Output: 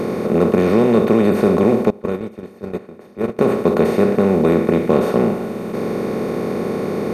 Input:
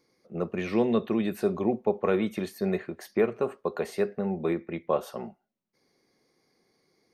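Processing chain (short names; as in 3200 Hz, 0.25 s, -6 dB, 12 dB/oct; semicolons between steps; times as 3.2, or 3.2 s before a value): per-bin compression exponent 0.2; 1.9–3.39 gate -15 dBFS, range -22 dB; low shelf 300 Hz +12 dB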